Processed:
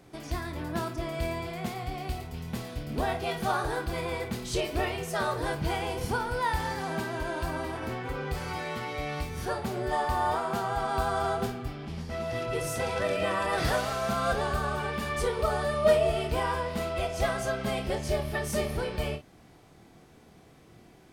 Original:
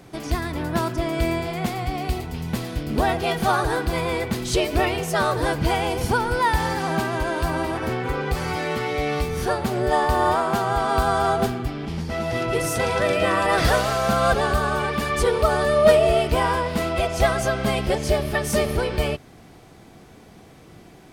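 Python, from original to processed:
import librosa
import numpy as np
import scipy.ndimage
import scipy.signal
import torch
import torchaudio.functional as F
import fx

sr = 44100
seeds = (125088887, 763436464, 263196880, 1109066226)

y = fx.room_early_taps(x, sr, ms=(26, 53), db=(-8.0, -12.0))
y = F.gain(torch.from_numpy(y), -9.0).numpy()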